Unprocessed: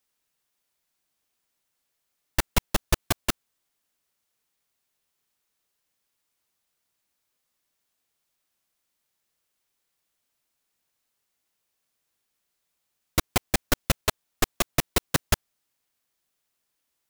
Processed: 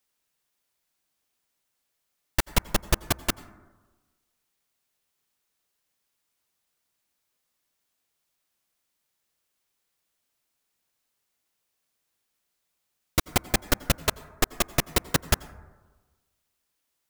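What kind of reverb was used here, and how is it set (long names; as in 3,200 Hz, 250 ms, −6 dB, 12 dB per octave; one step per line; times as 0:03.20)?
dense smooth reverb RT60 1.3 s, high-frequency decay 0.25×, pre-delay 75 ms, DRR 18.5 dB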